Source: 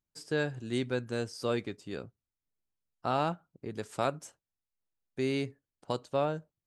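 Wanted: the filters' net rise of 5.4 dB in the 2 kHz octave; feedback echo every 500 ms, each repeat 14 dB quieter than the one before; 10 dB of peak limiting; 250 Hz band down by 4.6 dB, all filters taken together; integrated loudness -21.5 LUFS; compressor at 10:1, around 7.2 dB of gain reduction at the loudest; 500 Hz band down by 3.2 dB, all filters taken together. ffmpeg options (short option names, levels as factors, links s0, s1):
-af "equalizer=f=250:t=o:g=-5,equalizer=f=500:t=o:g=-3,equalizer=f=2000:t=o:g=7.5,acompressor=threshold=0.0251:ratio=10,alimiter=level_in=1.78:limit=0.0631:level=0:latency=1,volume=0.562,aecho=1:1:500|1000:0.2|0.0399,volume=11.9"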